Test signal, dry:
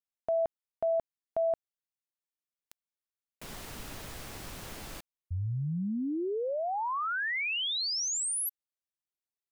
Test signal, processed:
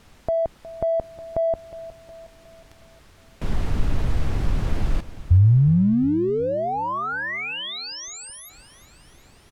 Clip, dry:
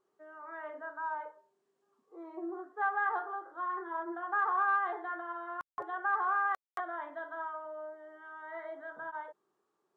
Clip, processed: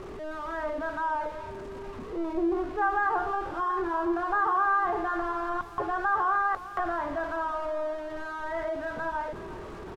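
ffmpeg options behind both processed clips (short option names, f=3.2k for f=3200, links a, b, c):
-filter_complex "[0:a]aeval=exprs='val(0)+0.5*0.00531*sgn(val(0))':c=same,asplit=2[a][b];[b]acompressor=threshold=-38dB:ratio=6:release=45,volume=-0.5dB[c];[a][c]amix=inputs=2:normalize=0,aemphasis=mode=reproduction:type=riaa,aecho=1:1:363|726|1089|1452|1815:0.158|0.0808|0.0412|0.021|0.0107,volume=2dB"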